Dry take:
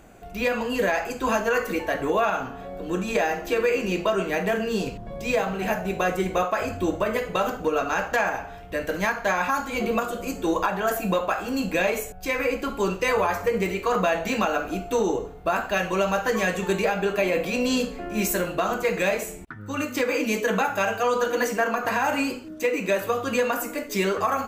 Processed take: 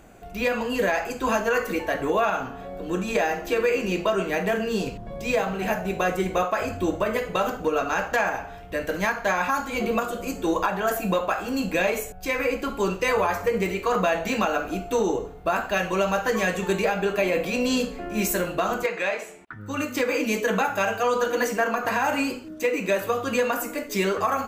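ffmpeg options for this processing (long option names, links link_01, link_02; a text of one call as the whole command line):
ffmpeg -i in.wav -filter_complex "[0:a]asettb=1/sr,asplit=3[link_01][link_02][link_03];[link_01]atrim=end=18.864[link_04];[link_02]atrim=start=18.86:end=19.53,asetpts=PTS-STARTPTS,afade=type=in:duration=0.004:curve=qsin,afade=type=out:start_time=0.666:duration=0.004:curve=qsin,bandpass=frequency=1500:width_type=q:width=0.51[link_05];[link_03]atrim=start=19.526[link_06];[link_04][link_05]acrossfade=duration=0.004:curve1=hsin:curve2=qsin[link_07];[link_07][link_06]acrossfade=duration=0.004:curve1=qsin:curve2=hsin" out.wav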